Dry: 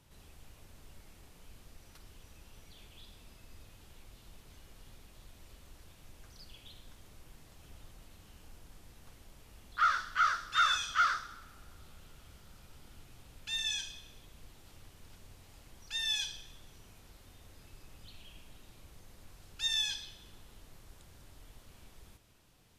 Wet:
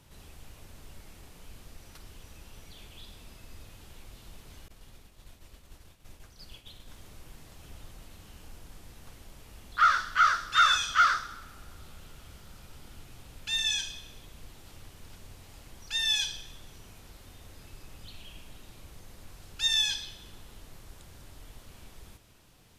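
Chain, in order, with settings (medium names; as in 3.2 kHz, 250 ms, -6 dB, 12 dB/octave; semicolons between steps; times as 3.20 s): 4.68–6.90 s: expander -48 dBFS; trim +6 dB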